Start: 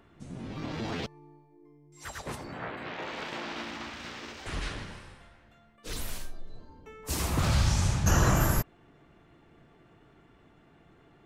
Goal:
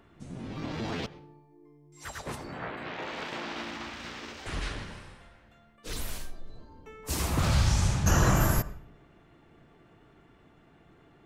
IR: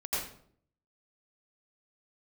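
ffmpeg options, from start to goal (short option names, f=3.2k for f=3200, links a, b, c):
-filter_complex "[0:a]asplit=2[a][b];[1:a]atrim=start_sample=2205,highshelf=f=5.3k:g=-11[c];[b][c]afir=irnorm=-1:irlink=0,volume=-21dB[d];[a][d]amix=inputs=2:normalize=0"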